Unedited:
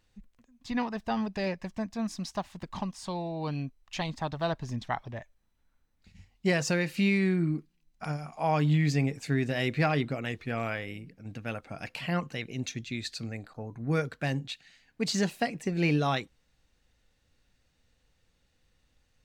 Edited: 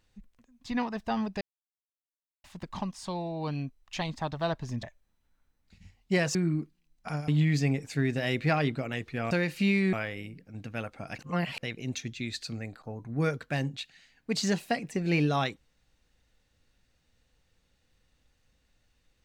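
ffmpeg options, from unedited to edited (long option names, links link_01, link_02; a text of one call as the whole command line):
ffmpeg -i in.wav -filter_complex "[0:a]asplit=10[link_01][link_02][link_03][link_04][link_05][link_06][link_07][link_08][link_09][link_10];[link_01]atrim=end=1.41,asetpts=PTS-STARTPTS,afade=type=out:start_time=1.406:duration=0.004:curve=hsin[link_11];[link_02]atrim=start=1.41:end=2.44,asetpts=PTS-STARTPTS,volume=0[link_12];[link_03]atrim=start=2.44:end=4.832,asetpts=PTS-STARTPTS,afade=type=in:duration=0.004:curve=hsin[link_13];[link_04]atrim=start=5.168:end=6.692[link_14];[link_05]atrim=start=7.308:end=8.242[link_15];[link_06]atrim=start=8.608:end=10.642[link_16];[link_07]atrim=start=6.688:end=7.312[link_17];[link_08]atrim=start=10.638:end=11.902[link_18];[link_09]atrim=start=11.898:end=12.342,asetpts=PTS-STARTPTS,areverse[link_19];[link_10]atrim=start=12.338[link_20];[link_11][link_12][link_13]concat=n=3:v=0:a=1[link_21];[link_21][link_14]acrossfade=duration=0.004:curve1=hsin:curve2=hsin[link_22];[link_22][link_15]acrossfade=duration=0.004:curve1=hsin:curve2=hsin[link_23];[link_23][link_16]acrossfade=duration=0.004:curve1=hsin:curve2=hsin[link_24];[link_24][link_17]acrossfade=duration=0.004:curve1=hsin:curve2=hsin[link_25];[link_25][link_18]acrossfade=duration=0.004:curve1=hsin:curve2=hsin[link_26];[link_26][link_19]acrossfade=duration=0.004:curve1=hsin:curve2=hsin[link_27];[link_27][link_20]acrossfade=duration=0.004:curve1=hsin:curve2=hsin" out.wav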